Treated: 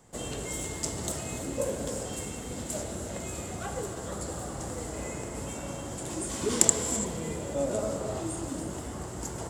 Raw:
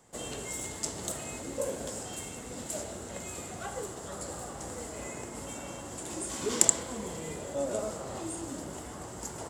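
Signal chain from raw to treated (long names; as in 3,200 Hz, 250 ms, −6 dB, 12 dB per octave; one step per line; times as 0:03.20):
low-shelf EQ 220 Hz +7.5 dB
convolution reverb, pre-delay 3 ms, DRR 8 dB
level +1 dB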